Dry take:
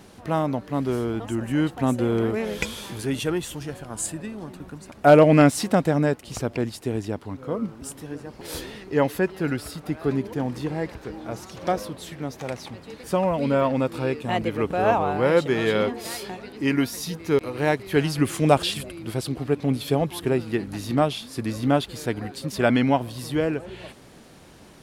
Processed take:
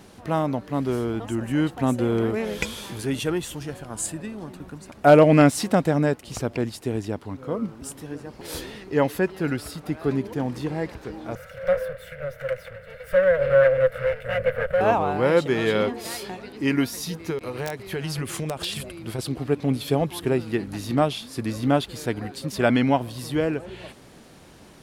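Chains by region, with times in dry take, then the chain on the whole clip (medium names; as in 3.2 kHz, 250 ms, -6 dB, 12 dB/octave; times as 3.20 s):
11.35–14.81 s: comb filter that takes the minimum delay 1.4 ms + FFT filter 140 Hz 0 dB, 330 Hz -25 dB, 520 Hz +14 dB, 810 Hz -17 dB, 1.6 kHz +10 dB, 2.4 kHz +1 dB, 4 kHz -10 dB, 6.5 kHz -15 dB, 9.4 kHz -8 dB, 14 kHz -3 dB
17.30–19.19 s: band-stop 290 Hz, Q 5.3 + compression 16:1, threshold -24 dBFS + integer overflow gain 18 dB
whole clip: none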